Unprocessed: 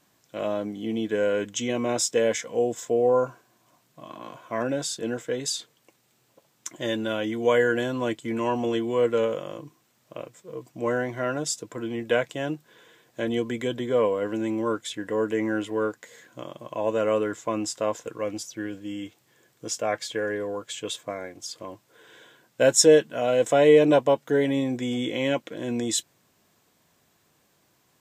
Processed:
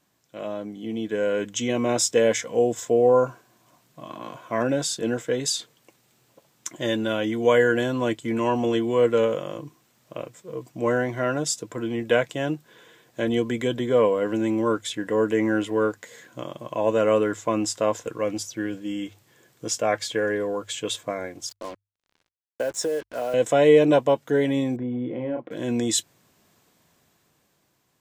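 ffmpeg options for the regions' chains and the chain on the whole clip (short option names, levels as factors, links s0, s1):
-filter_complex "[0:a]asettb=1/sr,asplit=3[s0][s1][s2];[s0]atrim=end=21.494[s3];[s1]atrim=start=21.49:end=23.34,asetpts=PTS-STARTPTS,afade=t=in:d=0.004:c=qsin,afade=t=out:st=1.846:d=0.004:c=qsin,acrossover=split=290 2000:gain=0.251 1 0.251[s4][s5][s6];[s4][s5][s6]amix=inputs=3:normalize=0,acompressor=threshold=0.0708:ratio=12:attack=3.2:release=140:knee=1:detection=peak,acrusher=bits=6:mix=0:aa=0.5[s7];[s2]atrim=start=23.336[s8];[s3][s7]acrossfade=d=0.004:c1=hsin:c2=qsin[s9];[s9][s8]acrossfade=d=0.004:c1=qsin:c2=hsin,asettb=1/sr,asplit=3[s10][s11][s12];[s10]atrim=end=24.764[s13];[s11]atrim=start=24.76:end=25.51,asetpts=PTS-STARTPTS,afade=t=in:d=0.004:c=qsin,afade=t=out:st=0.746:d=0.004:c=qsin,lowpass=1000,asplit=2[s14][s15];[s15]adelay=32,volume=0.562[s16];[s14][s16]amix=inputs=2:normalize=0,atrim=end_sample=33075,acompressor=threshold=0.0355:ratio=2.5:attack=3.2:release=140:knee=1:detection=peak[s17];[s12]atrim=start=25.506[s18];[s13][s17]acrossfade=d=0.004:c1=hsin:c2=qsin[s19];[s19][s18]acrossfade=d=0.004:c1=qsin:c2=hsin,dynaudnorm=f=380:g=7:m=2.51,lowshelf=f=150:g=3.5,bandreject=f=50:t=h:w=6,bandreject=f=100:t=h:w=6,volume=0.596"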